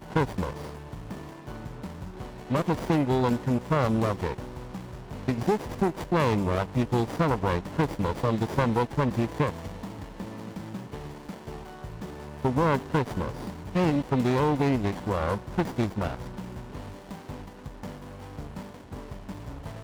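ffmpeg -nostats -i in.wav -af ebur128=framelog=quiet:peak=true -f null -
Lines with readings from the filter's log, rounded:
Integrated loudness:
  I:         -27.6 LUFS
  Threshold: -39.4 LUFS
Loudness range:
  LRA:         8.6 LU
  Threshold: -48.9 LUFS
  LRA low:   -35.3 LUFS
  LRA high:  -26.7 LUFS
True peak:
  Peak:      -10.0 dBFS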